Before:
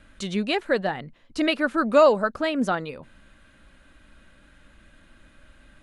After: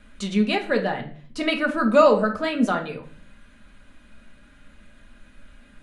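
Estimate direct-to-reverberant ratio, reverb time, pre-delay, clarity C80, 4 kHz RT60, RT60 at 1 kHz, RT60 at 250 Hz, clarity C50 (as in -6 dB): 1.5 dB, 0.50 s, 4 ms, 16.0 dB, 0.40 s, 0.40 s, 0.65 s, 11.0 dB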